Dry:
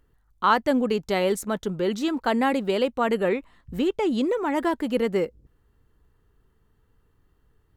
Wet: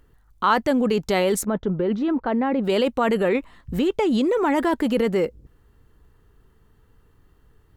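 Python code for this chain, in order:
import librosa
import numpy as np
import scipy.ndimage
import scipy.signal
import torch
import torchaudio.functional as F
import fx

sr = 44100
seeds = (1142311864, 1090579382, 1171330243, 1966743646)

p1 = fx.over_compress(x, sr, threshold_db=-26.0, ratio=-0.5)
p2 = x + F.gain(torch.from_numpy(p1), -2.0).numpy()
y = fx.spacing_loss(p2, sr, db_at_10k=41, at=(1.44, 2.63), fade=0.02)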